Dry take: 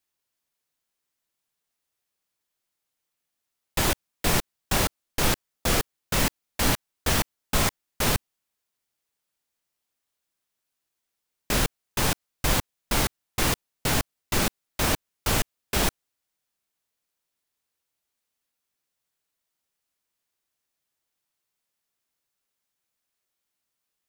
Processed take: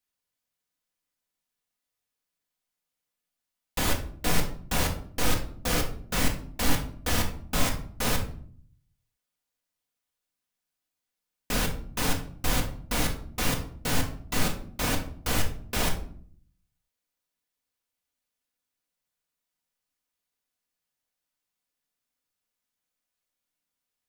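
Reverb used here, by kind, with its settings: simulated room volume 630 m³, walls furnished, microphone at 1.9 m; trim -5.5 dB

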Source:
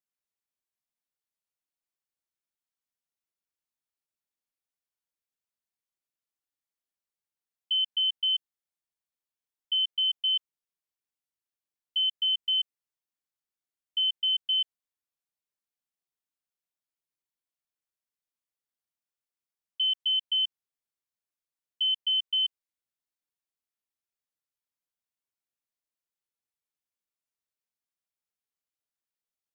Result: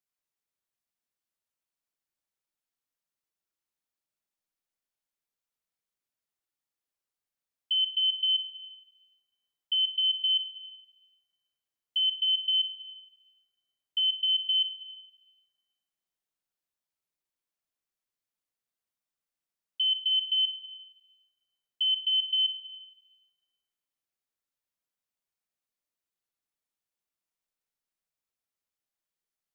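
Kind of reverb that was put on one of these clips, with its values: algorithmic reverb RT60 2.9 s, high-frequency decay 0.35×, pre-delay 5 ms, DRR 4.5 dB

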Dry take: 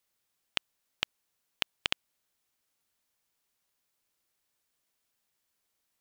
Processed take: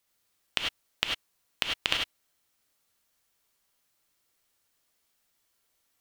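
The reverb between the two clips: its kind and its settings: gated-style reverb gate 120 ms rising, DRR 0 dB; trim +2.5 dB

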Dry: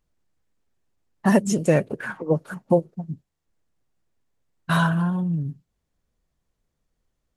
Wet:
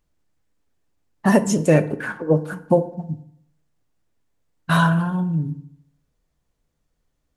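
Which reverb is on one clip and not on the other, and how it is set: FDN reverb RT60 0.69 s, low-frequency decay 1×, high-frequency decay 0.6×, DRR 10 dB; trim +2.5 dB

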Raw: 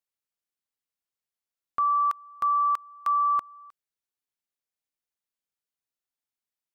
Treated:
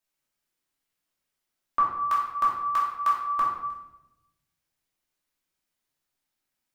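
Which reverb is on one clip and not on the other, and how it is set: simulated room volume 340 m³, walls mixed, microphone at 2.7 m; trim +2 dB

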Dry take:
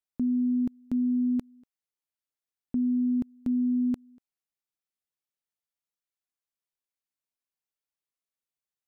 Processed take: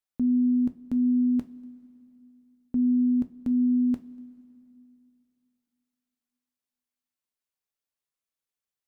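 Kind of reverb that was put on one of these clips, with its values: two-slope reverb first 0.23 s, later 2.9 s, from -18 dB, DRR 8 dB

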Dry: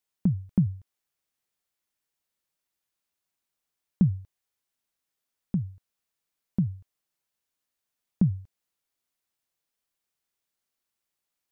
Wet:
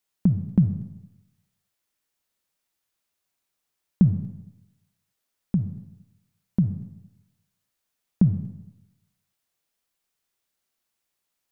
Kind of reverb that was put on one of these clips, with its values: algorithmic reverb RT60 0.93 s, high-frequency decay 0.85×, pre-delay 10 ms, DRR 9.5 dB; trim +4 dB

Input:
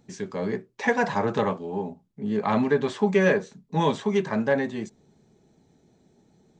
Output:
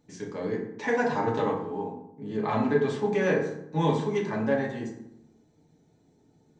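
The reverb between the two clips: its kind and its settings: FDN reverb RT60 0.78 s, low-frequency decay 1.35×, high-frequency decay 0.55×, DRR -1.5 dB; trim -7 dB

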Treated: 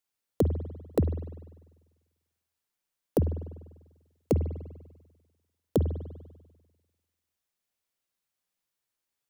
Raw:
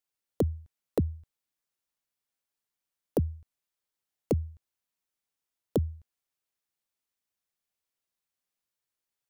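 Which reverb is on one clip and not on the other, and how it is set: spring tank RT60 1.3 s, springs 49 ms, chirp 25 ms, DRR 9.5 dB; trim +2 dB

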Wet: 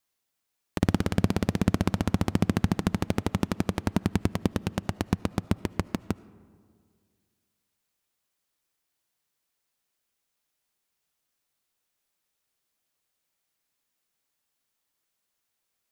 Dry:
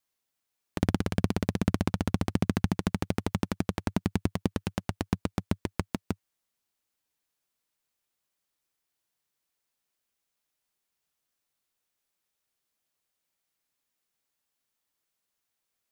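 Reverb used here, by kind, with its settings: algorithmic reverb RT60 2 s, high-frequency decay 0.4×, pre-delay 35 ms, DRR 19.5 dB; trim +2.5 dB

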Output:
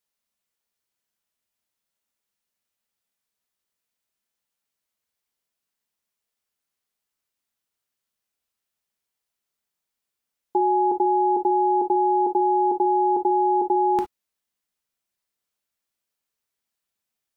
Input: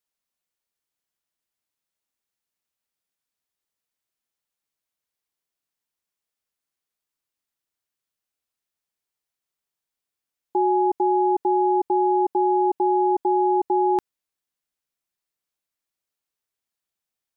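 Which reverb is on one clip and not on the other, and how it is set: gated-style reverb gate 80 ms flat, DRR 6 dB; trim +1.5 dB

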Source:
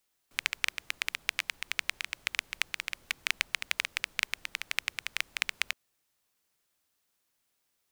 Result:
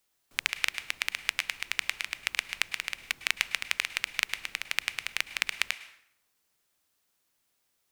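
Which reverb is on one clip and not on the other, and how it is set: plate-style reverb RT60 0.74 s, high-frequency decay 0.75×, pre-delay 95 ms, DRR 14 dB; trim +2 dB

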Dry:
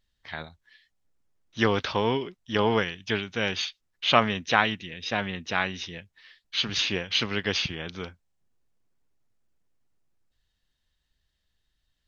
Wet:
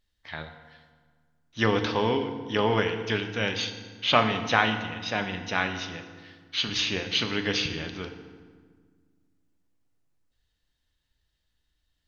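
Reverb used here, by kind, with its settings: FDN reverb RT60 1.6 s, low-frequency decay 1.5×, high-frequency decay 0.7×, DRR 6 dB; trim -1 dB

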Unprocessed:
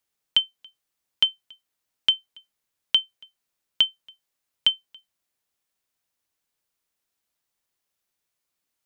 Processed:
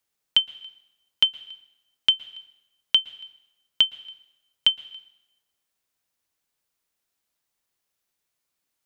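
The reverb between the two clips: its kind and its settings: plate-style reverb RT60 0.95 s, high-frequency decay 0.9×, pre-delay 105 ms, DRR 18 dB; trim +1 dB

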